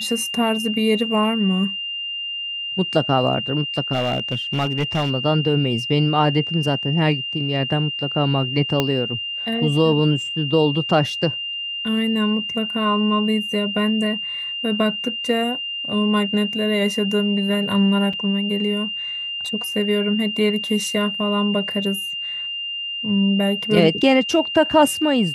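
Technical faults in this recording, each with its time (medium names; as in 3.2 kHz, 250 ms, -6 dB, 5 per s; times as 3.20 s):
whine 2.8 kHz -25 dBFS
3.92–5.11 s: clipped -16 dBFS
8.80 s: pop -5 dBFS
18.13 s: dropout 4.7 ms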